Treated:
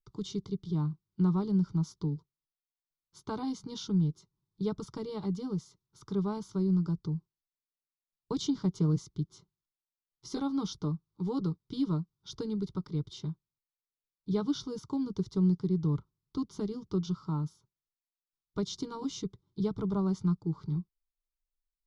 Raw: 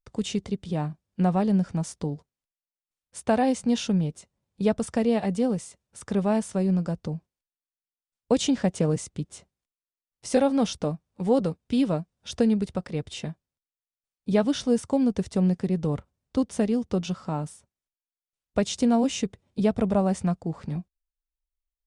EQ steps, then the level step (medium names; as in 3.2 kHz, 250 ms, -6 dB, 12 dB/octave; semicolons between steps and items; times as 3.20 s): treble shelf 5.1 kHz -8.5 dB; static phaser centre 350 Hz, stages 8; static phaser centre 2.6 kHz, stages 6; 0.0 dB